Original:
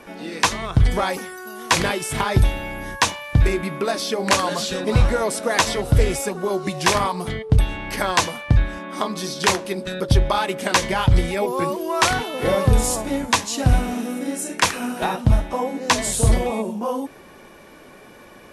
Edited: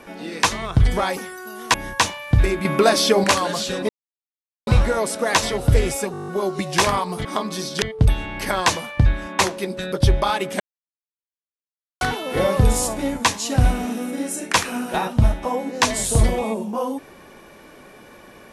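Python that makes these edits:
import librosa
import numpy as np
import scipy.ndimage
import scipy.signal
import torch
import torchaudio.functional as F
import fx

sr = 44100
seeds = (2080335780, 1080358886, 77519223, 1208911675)

y = fx.edit(x, sr, fx.cut(start_s=1.74, length_s=1.02),
    fx.clip_gain(start_s=3.67, length_s=0.59, db=7.5),
    fx.insert_silence(at_s=4.91, length_s=0.78),
    fx.stutter(start_s=6.36, slice_s=0.02, count=9),
    fx.move(start_s=8.9, length_s=0.57, to_s=7.33),
    fx.silence(start_s=10.68, length_s=1.41), tone=tone)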